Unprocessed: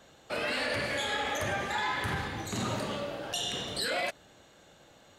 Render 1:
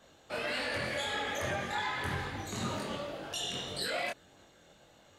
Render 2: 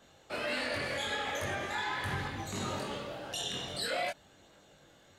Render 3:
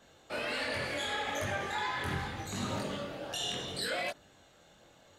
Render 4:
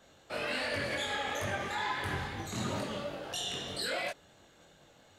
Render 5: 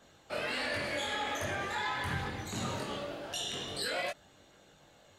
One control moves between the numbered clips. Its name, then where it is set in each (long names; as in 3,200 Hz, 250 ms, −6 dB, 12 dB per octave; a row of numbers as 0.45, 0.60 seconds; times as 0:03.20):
multi-voice chorus, speed: 1.7, 0.44, 0.72, 2.7, 0.22 Hertz